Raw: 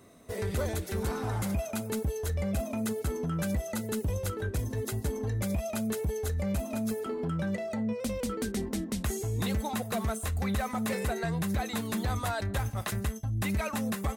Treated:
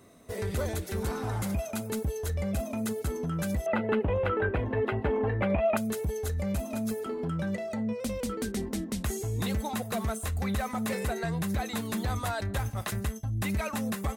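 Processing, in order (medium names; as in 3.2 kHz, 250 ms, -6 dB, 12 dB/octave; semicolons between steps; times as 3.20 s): 3.66–5.77 s: FFT filter 130 Hz 0 dB, 790 Hz +12 dB, 2.8 kHz +8 dB, 6.2 kHz -30 dB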